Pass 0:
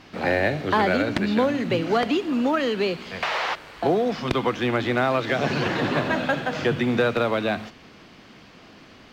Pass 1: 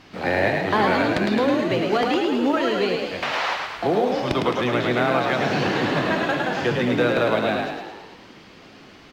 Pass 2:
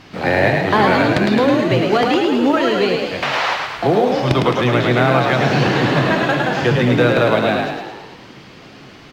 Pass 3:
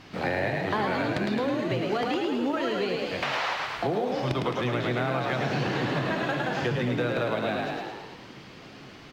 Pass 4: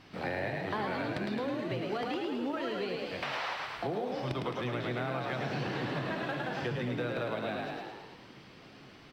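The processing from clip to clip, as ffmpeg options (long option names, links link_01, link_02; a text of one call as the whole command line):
ffmpeg -i in.wav -filter_complex "[0:a]bandreject=frequency=77.22:width_type=h:width=4,bandreject=frequency=154.44:width_type=h:width=4,bandreject=frequency=231.66:width_type=h:width=4,bandreject=frequency=308.88:width_type=h:width=4,bandreject=frequency=386.1:width_type=h:width=4,bandreject=frequency=463.32:width_type=h:width=4,bandreject=frequency=540.54:width_type=h:width=4,bandreject=frequency=617.76:width_type=h:width=4,bandreject=frequency=694.98:width_type=h:width=4,bandreject=frequency=772.2:width_type=h:width=4,bandreject=frequency=849.42:width_type=h:width=4,bandreject=frequency=926.64:width_type=h:width=4,bandreject=frequency=1003.86:width_type=h:width=4,bandreject=frequency=1081.08:width_type=h:width=4,bandreject=frequency=1158.3:width_type=h:width=4,bandreject=frequency=1235.52:width_type=h:width=4,bandreject=frequency=1312.74:width_type=h:width=4,bandreject=frequency=1389.96:width_type=h:width=4,bandreject=frequency=1467.18:width_type=h:width=4,bandreject=frequency=1544.4:width_type=h:width=4,bandreject=frequency=1621.62:width_type=h:width=4,bandreject=frequency=1698.84:width_type=h:width=4,bandreject=frequency=1776.06:width_type=h:width=4,bandreject=frequency=1853.28:width_type=h:width=4,bandreject=frequency=1930.5:width_type=h:width=4,bandreject=frequency=2007.72:width_type=h:width=4,bandreject=frequency=2084.94:width_type=h:width=4,bandreject=frequency=2162.16:width_type=h:width=4,bandreject=frequency=2239.38:width_type=h:width=4,bandreject=frequency=2316.6:width_type=h:width=4,bandreject=frequency=2393.82:width_type=h:width=4,bandreject=frequency=2471.04:width_type=h:width=4,bandreject=frequency=2548.26:width_type=h:width=4,bandreject=frequency=2625.48:width_type=h:width=4,bandreject=frequency=2702.7:width_type=h:width=4,bandreject=frequency=2779.92:width_type=h:width=4,asplit=9[link_01][link_02][link_03][link_04][link_05][link_06][link_07][link_08][link_09];[link_02]adelay=107,afreqshift=46,volume=-3.5dB[link_10];[link_03]adelay=214,afreqshift=92,volume=-8.4dB[link_11];[link_04]adelay=321,afreqshift=138,volume=-13.3dB[link_12];[link_05]adelay=428,afreqshift=184,volume=-18.1dB[link_13];[link_06]adelay=535,afreqshift=230,volume=-23dB[link_14];[link_07]adelay=642,afreqshift=276,volume=-27.9dB[link_15];[link_08]adelay=749,afreqshift=322,volume=-32.8dB[link_16];[link_09]adelay=856,afreqshift=368,volume=-37.7dB[link_17];[link_01][link_10][link_11][link_12][link_13][link_14][link_15][link_16][link_17]amix=inputs=9:normalize=0" out.wav
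ffmpeg -i in.wav -af "equalizer=frequency=130:width=4.1:gain=9,volume=5.5dB" out.wav
ffmpeg -i in.wav -af "acompressor=threshold=-20dB:ratio=3,volume=-6dB" out.wav
ffmpeg -i in.wav -af "bandreject=frequency=6700:width=7.9,volume=-7dB" out.wav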